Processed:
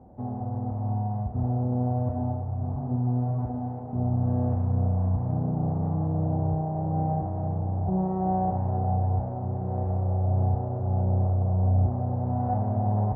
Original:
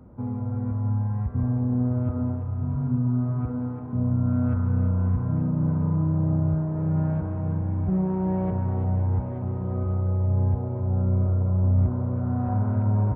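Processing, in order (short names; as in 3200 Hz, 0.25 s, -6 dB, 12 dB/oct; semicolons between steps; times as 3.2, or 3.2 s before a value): minimum comb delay 0.36 ms; synth low-pass 750 Hz, resonance Q 6.1; on a send: reverb RT60 0.35 s, pre-delay 31 ms, DRR 13 dB; on the sum: gain -4 dB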